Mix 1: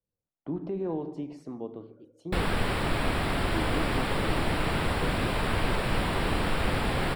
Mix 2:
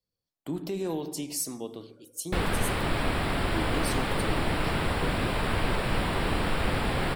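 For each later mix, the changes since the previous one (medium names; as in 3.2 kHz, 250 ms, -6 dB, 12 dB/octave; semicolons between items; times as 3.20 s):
speech: remove low-pass 1.2 kHz 12 dB/octave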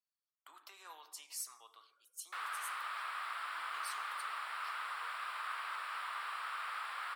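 background -3.5 dB; master: add ladder high-pass 1.1 kHz, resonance 65%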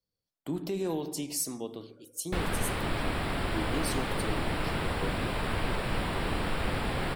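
speech: send -7.0 dB; master: remove ladder high-pass 1.1 kHz, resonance 65%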